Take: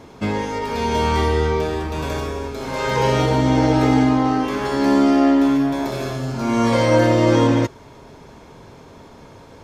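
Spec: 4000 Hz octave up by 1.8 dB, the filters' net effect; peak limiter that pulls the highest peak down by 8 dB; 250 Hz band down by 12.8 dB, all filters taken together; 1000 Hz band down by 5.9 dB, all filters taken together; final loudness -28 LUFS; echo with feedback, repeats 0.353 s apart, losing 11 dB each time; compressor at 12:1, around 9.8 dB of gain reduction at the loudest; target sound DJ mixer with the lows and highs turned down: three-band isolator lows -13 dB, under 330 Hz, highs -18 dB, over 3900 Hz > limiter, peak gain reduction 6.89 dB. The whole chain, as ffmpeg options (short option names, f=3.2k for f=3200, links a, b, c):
-filter_complex "[0:a]equalizer=f=250:t=o:g=-7.5,equalizer=f=1k:t=o:g=-7,equalizer=f=4k:t=o:g=8,acompressor=threshold=-24dB:ratio=12,alimiter=limit=-24dB:level=0:latency=1,acrossover=split=330 3900:gain=0.224 1 0.126[a][b][c];[a][b][c]amix=inputs=3:normalize=0,aecho=1:1:353|706|1059:0.282|0.0789|0.0221,volume=12dB,alimiter=limit=-19dB:level=0:latency=1"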